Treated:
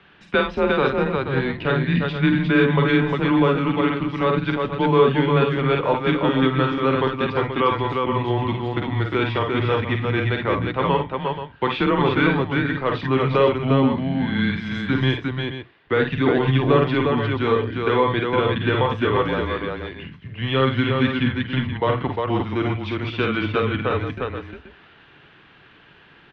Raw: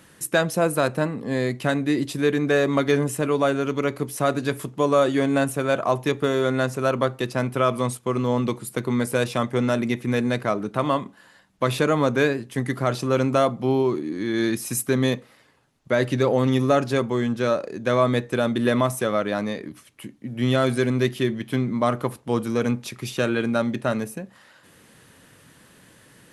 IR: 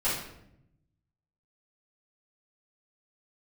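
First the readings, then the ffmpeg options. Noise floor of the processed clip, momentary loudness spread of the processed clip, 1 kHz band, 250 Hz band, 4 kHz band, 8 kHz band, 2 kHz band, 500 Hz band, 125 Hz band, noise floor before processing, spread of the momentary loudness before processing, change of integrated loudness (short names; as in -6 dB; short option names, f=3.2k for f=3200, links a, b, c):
-51 dBFS, 7 LU, +4.0 dB, +2.0 dB, +4.0 dB, under -25 dB, +4.0 dB, +1.0 dB, +4.5 dB, -54 dBFS, 7 LU, +2.0 dB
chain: -filter_complex "[0:a]highpass=130,aemphasis=mode=production:type=75kf,asplit=2[a][b];[b]aecho=0:1:46|53|83|354|479:0.376|0.473|0.112|0.668|0.316[c];[a][c]amix=inputs=2:normalize=0,highpass=f=230:t=q:w=0.5412,highpass=f=230:t=q:w=1.307,lowpass=f=3.4k:t=q:w=0.5176,lowpass=f=3.4k:t=q:w=0.7071,lowpass=f=3.4k:t=q:w=1.932,afreqshift=-130"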